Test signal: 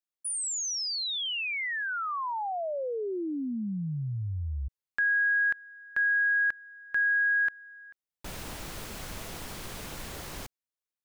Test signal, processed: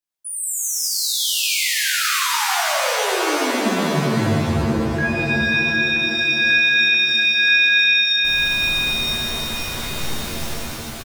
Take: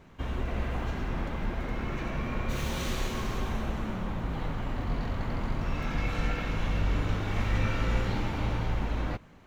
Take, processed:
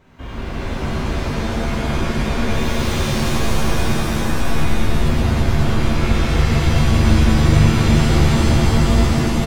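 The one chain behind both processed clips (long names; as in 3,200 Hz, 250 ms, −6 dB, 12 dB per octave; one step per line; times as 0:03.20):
in parallel at −11.5 dB: soft clipping −27 dBFS
on the sum: double-tracking delay 20 ms −11.5 dB
reverb with rising layers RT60 4 s, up +7 semitones, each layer −2 dB, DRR −7.5 dB
level −1.5 dB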